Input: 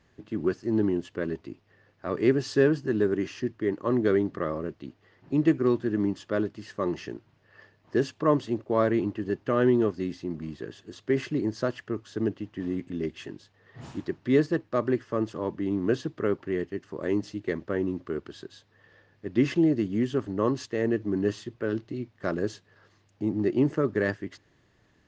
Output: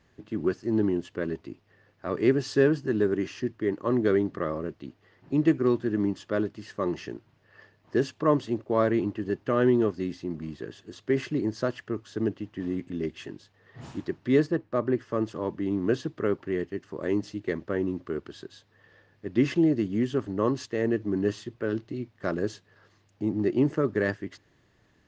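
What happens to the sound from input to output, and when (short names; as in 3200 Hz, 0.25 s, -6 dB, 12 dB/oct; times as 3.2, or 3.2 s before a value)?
14.47–14.99 high shelf 2500 Hz -9 dB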